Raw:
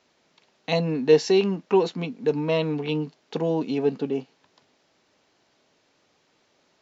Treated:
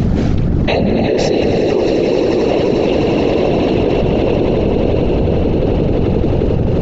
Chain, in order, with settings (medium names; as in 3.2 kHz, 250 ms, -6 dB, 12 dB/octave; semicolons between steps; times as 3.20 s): wind noise 160 Hz -35 dBFS; treble shelf 4.6 kHz -10.5 dB; band-stop 1 kHz, Q 6.3; on a send: echo with a slow build-up 88 ms, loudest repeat 8, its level -8 dB; on the sum: whisper effect; level flattener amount 100%; trim -2 dB